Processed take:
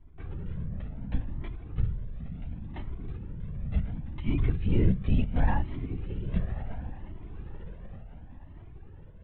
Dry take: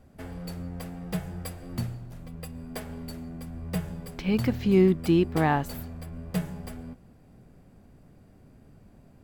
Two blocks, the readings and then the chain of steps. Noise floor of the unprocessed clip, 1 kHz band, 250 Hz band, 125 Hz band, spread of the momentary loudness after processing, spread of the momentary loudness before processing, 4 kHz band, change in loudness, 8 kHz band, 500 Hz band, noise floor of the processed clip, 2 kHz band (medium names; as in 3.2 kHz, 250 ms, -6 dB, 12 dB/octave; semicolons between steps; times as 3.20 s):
-55 dBFS, -8.5 dB, -7.0 dB, +1.0 dB, 21 LU, 19 LU, -10.5 dB, -4.0 dB, under -30 dB, -12.5 dB, -47 dBFS, -7.5 dB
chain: resonant low shelf 210 Hz +8 dB, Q 1.5; on a send: echo that smears into a reverb 1140 ms, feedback 41%, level -11.5 dB; on the sum: LPC vocoder at 8 kHz whisper; Shepard-style flanger rising 0.7 Hz; trim -3 dB